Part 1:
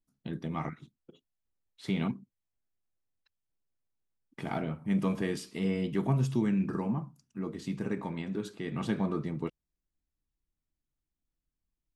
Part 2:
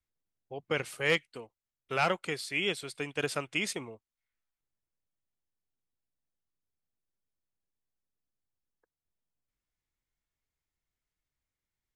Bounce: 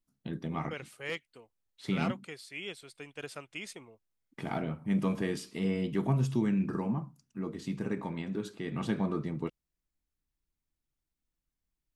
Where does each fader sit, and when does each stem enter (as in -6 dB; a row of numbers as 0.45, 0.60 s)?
-0.5, -10.0 dB; 0.00, 0.00 s